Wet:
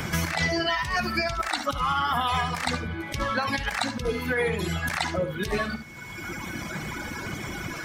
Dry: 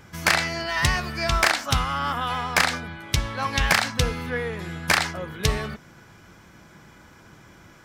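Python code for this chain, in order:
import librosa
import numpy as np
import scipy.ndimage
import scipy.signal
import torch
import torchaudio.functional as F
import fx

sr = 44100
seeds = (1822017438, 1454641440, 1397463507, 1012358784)

p1 = fx.spec_quant(x, sr, step_db=15)
p2 = fx.dereverb_blind(p1, sr, rt60_s=1.6)
p3 = fx.over_compress(p2, sr, threshold_db=-31.0, ratio=-1.0)
p4 = p3 + fx.room_early_taps(p3, sr, ms=(58, 71), db=(-15.0, -12.0), dry=0)
p5 = p4 + 10.0 ** (-56.0 / 20.0) * np.sin(2.0 * np.pi * 2200.0 * np.arange(len(p4)) / sr)
p6 = fx.band_squash(p5, sr, depth_pct=70)
y = p6 * 10.0 ** (3.5 / 20.0)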